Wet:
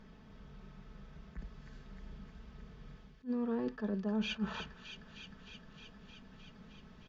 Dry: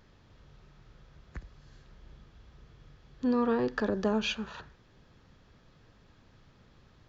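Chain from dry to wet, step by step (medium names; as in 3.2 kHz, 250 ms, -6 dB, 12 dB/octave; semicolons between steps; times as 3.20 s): peaking EQ 190 Hz +7 dB 0.65 oct; reverse; compression 10:1, threshold -36 dBFS, peak gain reduction 16.5 dB; reverse; treble shelf 6.2 kHz -12 dB; band-stop 4.1 kHz, Q 16; comb 4.6 ms, depth 55%; feedback echo behind a high-pass 309 ms, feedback 77%, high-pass 2.1 kHz, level -7 dB; attacks held to a fixed rise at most 340 dB/s; trim +1 dB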